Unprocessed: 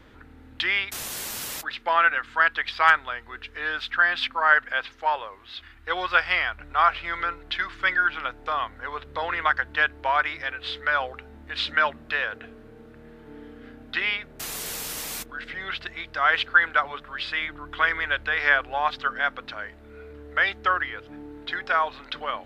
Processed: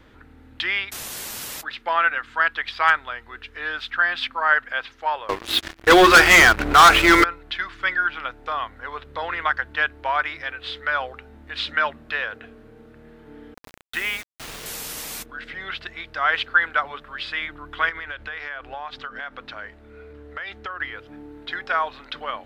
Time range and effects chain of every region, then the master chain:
0:05.29–0:07.24: parametric band 340 Hz +13.5 dB + mains-hum notches 60/120/180/240/300/360/420 Hz + leveller curve on the samples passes 5
0:13.54–0:14.66: low-pass filter 3,900 Hz + low-shelf EQ 100 Hz +4 dB + bit-depth reduction 6 bits, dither none
0:17.89–0:20.80: high-shelf EQ 11,000 Hz −9.5 dB + downward compressor, threshold −29 dBFS
whole clip: no processing

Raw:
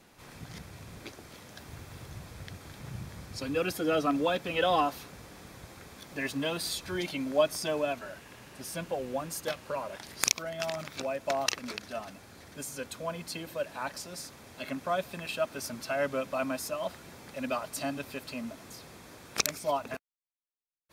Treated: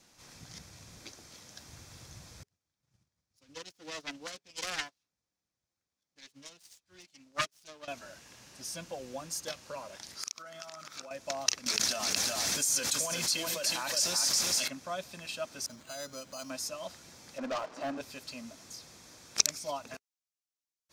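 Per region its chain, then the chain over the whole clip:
0:02.43–0:07.88: phase distortion by the signal itself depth 0.58 ms + dynamic equaliser 2,700 Hz, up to +4 dB, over −45 dBFS, Q 0.92 + expander for the loud parts 2.5 to 1, over −45 dBFS
0:10.15–0:11.11: high-pass filter 210 Hz 6 dB per octave + parametric band 1,300 Hz +13 dB 0.4 octaves + downward compressor, threshold −37 dBFS
0:11.66–0:14.68: spectral tilt +2 dB per octave + single-tap delay 367 ms −7.5 dB + envelope flattener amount 100%
0:15.66–0:16.50: hum removal 204.8 Hz, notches 36 + downward compressor 1.5 to 1, threshold −42 dBFS + bad sample-rate conversion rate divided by 8×, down filtered, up hold
0:17.38–0:18.01: flat-topped band-pass 650 Hz, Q 0.59 + leveller curve on the samples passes 3
whole clip: parametric band 5,900 Hz +13 dB 1.2 octaves; notch filter 410 Hz, Q 12; level −7.5 dB

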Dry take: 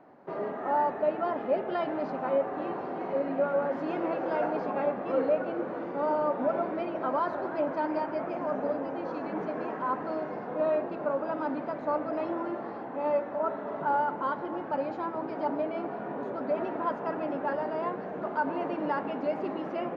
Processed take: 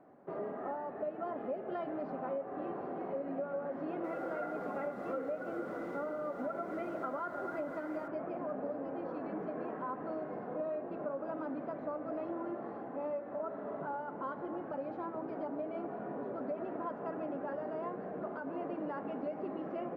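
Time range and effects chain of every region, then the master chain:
0:04.04–0:08.08: hollow resonant body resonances 1,400/2,000 Hz, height 17 dB, ringing for 55 ms + bit-depth reduction 8 bits, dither none
whole clip: low-pass filter 1,200 Hz 6 dB per octave; downward compressor, threshold −31 dBFS; notch filter 910 Hz, Q 9.9; level −3.5 dB

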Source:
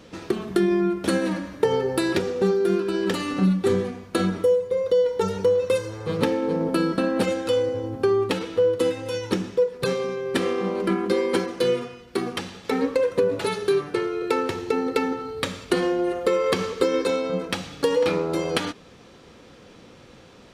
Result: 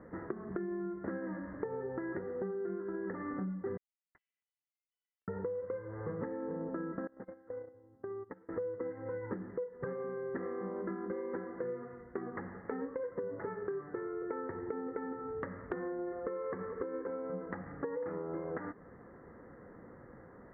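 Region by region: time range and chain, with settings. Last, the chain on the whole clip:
0:03.77–0:05.28: Butterworth high-pass 2,900 Hz 96 dB per octave + hard clipping −27.5 dBFS + level that may fall only so fast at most 34 dB per second
0:07.07–0:08.49: noise gate −21 dBFS, range −27 dB + downward compressor 16 to 1, threshold −33 dBFS
whole clip: Chebyshev low-pass filter 2,000 Hz, order 8; downward compressor 6 to 1, threshold −32 dBFS; level −4.5 dB

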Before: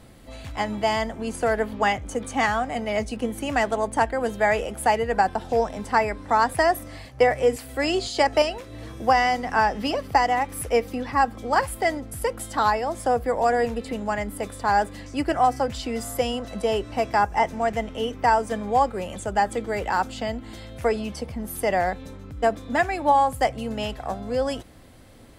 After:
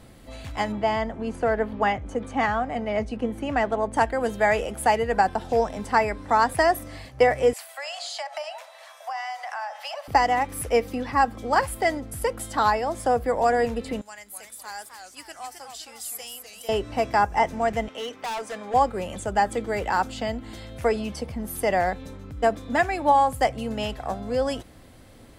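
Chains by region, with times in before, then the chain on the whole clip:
0:00.72–0:03.94: low-pass filter 3,900 Hz 6 dB per octave + high-shelf EQ 3,000 Hz −7 dB
0:07.53–0:10.08: Butterworth high-pass 580 Hz 96 dB per octave + downward compressor 5 to 1, threshold −30 dBFS + delay with a low-pass on its return 67 ms, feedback 68%, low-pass 1,500 Hz, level −13.5 dB
0:14.01–0:16.69: first-order pre-emphasis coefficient 0.97 + feedback echo with a swinging delay time 258 ms, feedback 42%, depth 199 cents, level −7 dB
0:17.88–0:18.74: meter weighting curve A + gain into a clipping stage and back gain 28.5 dB
whole clip: no processing

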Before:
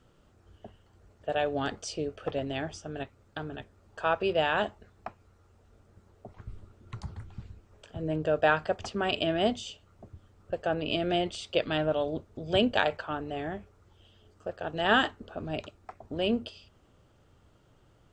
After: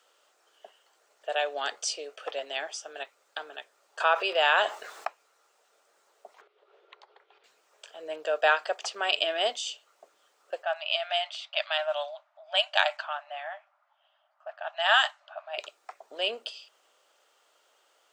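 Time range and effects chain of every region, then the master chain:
0:04.00–0:05.07: parametric band 1,200 Hz +3 dB 1 octave + envelope flattener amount 50%
0:06.41–0:07.44: downward compressor 3 to 1, threshold −52 dBFS + drawn EQ curve 120 Hz 0 dB, 240 Hz −23 dB, 390 Hz +14 dB, 620 Hz +7 dB, 1,100 Hz +2 dB, 3,400 Hz +2 dB, 9,900 Hz −28 dB
0:10.63–0:15.58: linear-phase brick-wall high-pass 570 Hz + low-pass that shuts in the quiet parts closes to 1,300 Hz, open at −24 dBFS
whole clip: high-pass filter 520 Hz 24 dB per octave; high-shelf EQ 2,200 Hz +9 dB

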